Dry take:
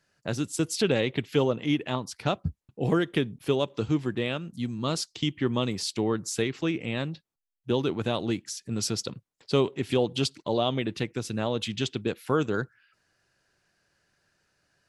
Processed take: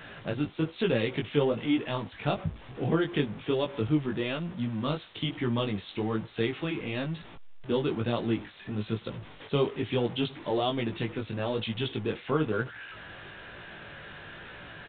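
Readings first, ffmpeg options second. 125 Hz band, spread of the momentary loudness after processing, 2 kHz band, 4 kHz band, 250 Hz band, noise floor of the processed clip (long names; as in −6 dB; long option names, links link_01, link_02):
−1.5 dB, 16 LU, −1.0 dB, −3.5 dB, −1.5 dB, −49 dBFS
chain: -af "aeval=exprs='val(0)+0.5*0.0188*sgn(val(0))':channel_layout=same,flanger=delay=17:depth=3.5:speed=1.1,aresample=8000,aresample=44100"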